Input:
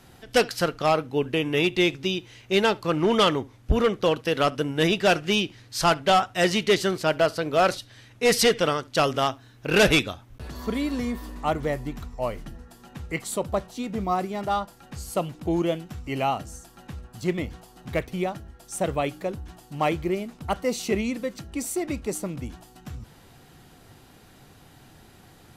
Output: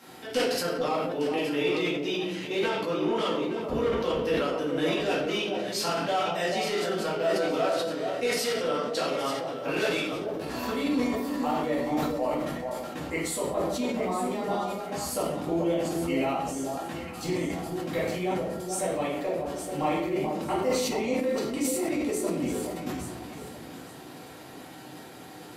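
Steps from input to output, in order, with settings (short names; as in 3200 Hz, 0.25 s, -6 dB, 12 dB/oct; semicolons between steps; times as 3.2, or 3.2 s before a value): HPF 230 Hz 12 dB/oct; compressor 6:1, threshold -35 dBFS, peak gain reduction 19.5 dB; echo with dull and thin repeats by turns 0.433 s, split 1000 Hz, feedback 53%, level -4.5 dB; shoebox room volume 160 m³, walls mixed, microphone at 2.2 m; sustainer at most 29 dB/s; gain -1 dB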